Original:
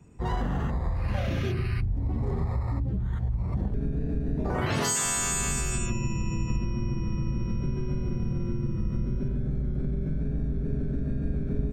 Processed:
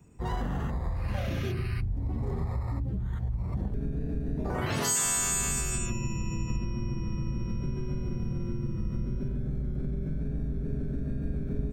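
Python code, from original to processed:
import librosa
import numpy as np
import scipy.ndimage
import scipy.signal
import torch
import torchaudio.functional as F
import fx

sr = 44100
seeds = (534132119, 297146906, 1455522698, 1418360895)

y = fx.high_shelf(x, sr, hz=10000.0, db=11.0)
y = y * librosa.db_to_amplitude(-3.0)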